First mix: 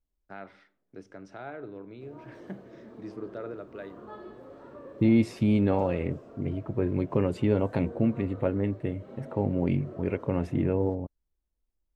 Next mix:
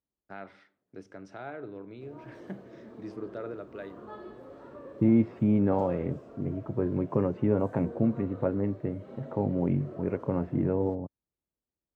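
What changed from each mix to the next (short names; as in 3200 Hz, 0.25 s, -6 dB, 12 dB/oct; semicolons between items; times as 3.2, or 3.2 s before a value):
second voice: add Chebyshev band-pass 120–1300 Hz, order 2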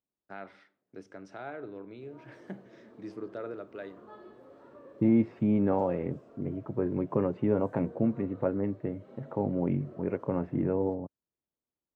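background -5.5 dB; master: add low shelf 82 Hz -12 dB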